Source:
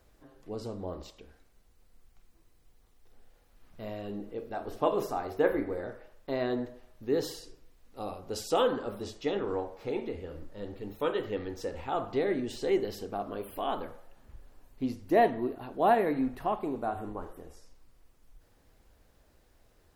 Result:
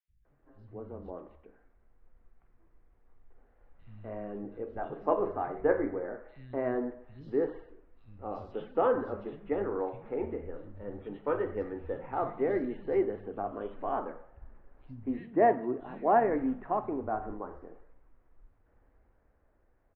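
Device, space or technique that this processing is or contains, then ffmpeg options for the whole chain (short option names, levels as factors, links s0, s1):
action camera in a waterproof case: -filter_complex "[0:a]asettb=1/sr,asplit=3[s0][s1][s2];[s0]atrim=end=15.104[s3];[s1]atrim=start=15.1:end=15.72,asetpts=PTS-STARTPTS,afade=t=in:d=0.004:c=qsin,afade=t=out:st=0.616:d=0.004:c=qsin,highpass=67[s4];[s2]atrim=start=15.716[s5];[s3][s4]acrossfade=d=0.004:c1=hsin:c2=qsin[s6];[s6][s5]acrossfade=d=0.004:c1=qsin:c2=hsin,lowpass=f=2000:w=0.5412,lowpass=f=2000:w=1.3066,acrossover=split=160|3100[s7][s8][s9];[s7]adelay=80[s10];[s8]adelay=250[s11];[s10][s11][s9]amix=inputs=3:normalize=0,dynaudnorm=f=150:g=21:m=1.78,volume=0.562" -ar 32000 -c:a aac -b:a 48k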